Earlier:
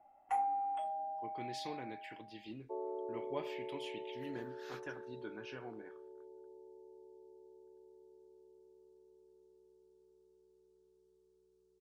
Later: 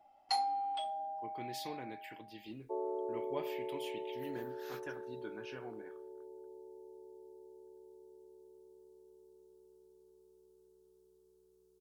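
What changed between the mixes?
first sound: remove Butterworth band-reject 4,500 Hz, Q 0.7
second sound +3.5 dB
master: remove low-pass filter 6,900 Hz 12 dB per octave

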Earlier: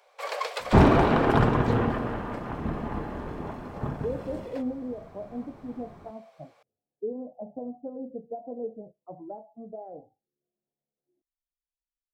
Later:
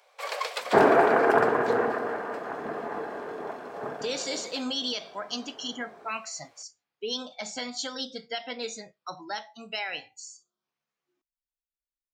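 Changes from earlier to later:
speech: remove Butterworth low-pass 700 Hz 36 dB per octave
second sound: add loudspeaker in its box 320–2,200 Hz, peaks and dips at 440 Hz +9 dB, 690 Hz +7 dB, 1,600 Hz +6 dB
master: add tilt shelving filter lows −3 dB, about 1,300 Hz

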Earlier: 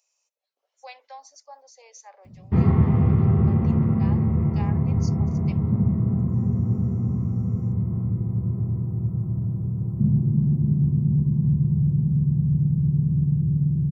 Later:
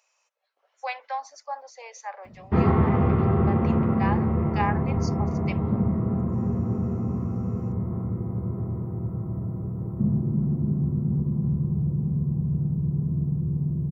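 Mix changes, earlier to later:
background: add graphic EQ with 10 bands 125 Hz −6 dB, 1,000 Hz −5 dB, 2,000 Hz −7 dB
master: remove drawn EQ curve 170 Hz 0 dB, 1,500 Hz −16 dB, 6,100 Hz 0 dB

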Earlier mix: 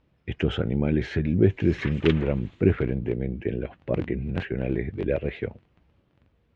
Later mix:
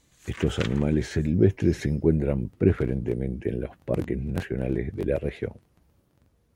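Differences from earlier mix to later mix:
background: entry −1.45 s
master: remove low-pass with resonance 2,900 Hz, resonance Q 1.6

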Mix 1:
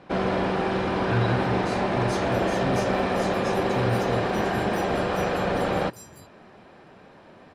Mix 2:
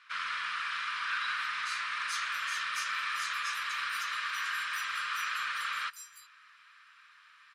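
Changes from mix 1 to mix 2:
speech: add bass and treble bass −15 dB, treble +1 dB
master: add elliptic high-pass filter 1,200 Hz, stop band 40 dB

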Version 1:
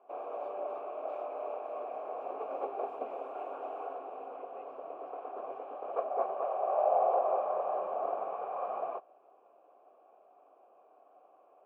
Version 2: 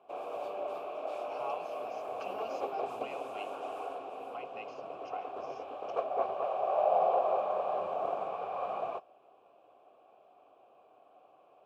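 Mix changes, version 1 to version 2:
speech +11.5 dB
second sound: unmuted
master: remove three-way crossover with the lows and the highs turned down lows −19 dB, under 240 Hz, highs −22 dB, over 2,100 Hz

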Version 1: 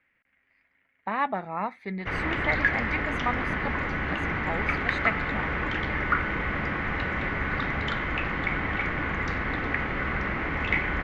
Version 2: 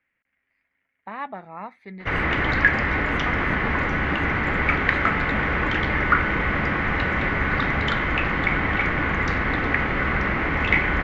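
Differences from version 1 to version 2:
speech −5.5 dB
background +6.0 dB

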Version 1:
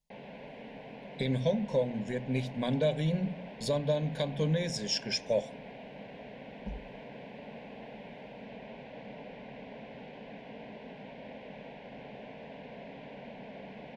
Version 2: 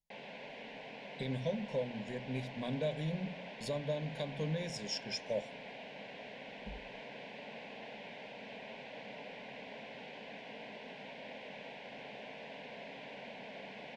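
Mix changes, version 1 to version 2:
speech −7.5 dB
background: add spectral tilt +3 dB per octave

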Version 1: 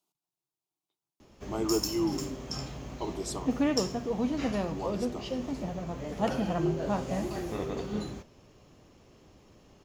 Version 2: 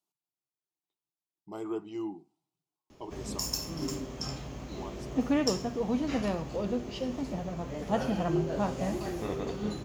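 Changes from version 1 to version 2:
speech −6.5 dB
background: entry +1.70 s

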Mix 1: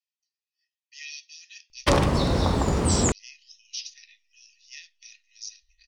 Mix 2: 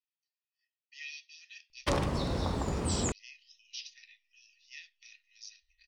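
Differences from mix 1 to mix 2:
speech: add high-frequency loss of the air 190 metres
background −9.5 dB

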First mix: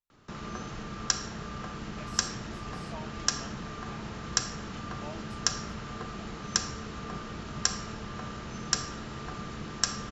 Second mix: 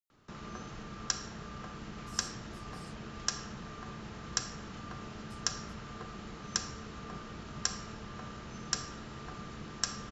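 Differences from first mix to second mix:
speech: add first difference
background −5.5 dB

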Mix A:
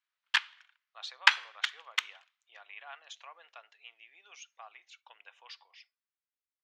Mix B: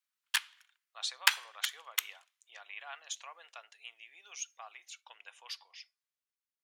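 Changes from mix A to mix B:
background −7.0 dB
master: remove high-frequency loss of the air 180 metres

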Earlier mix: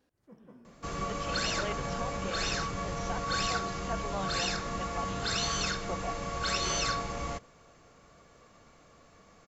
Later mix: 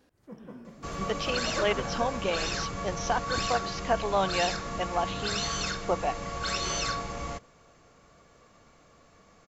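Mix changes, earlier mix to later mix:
speech +11.5 dB
first sound +9.0 dB

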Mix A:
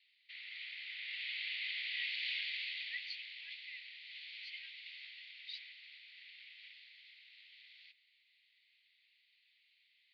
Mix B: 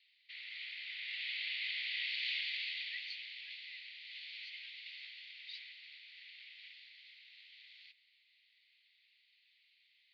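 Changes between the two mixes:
speech −4.5 dB
master: remove high-frequency loss of the air 72 metres

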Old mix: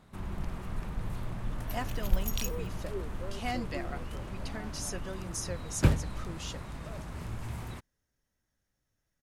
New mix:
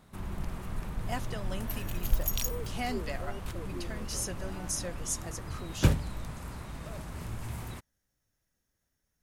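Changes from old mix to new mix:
speech: entry −0.65 s
master: add high-shelf EQ 8,000 Hz +8 dB

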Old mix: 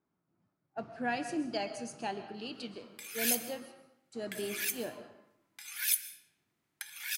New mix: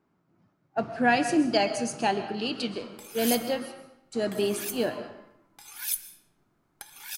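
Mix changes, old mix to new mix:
speech +11.5 dB
background: remove high-pass with resonance 1,900 Hz, resonance Q 2.3

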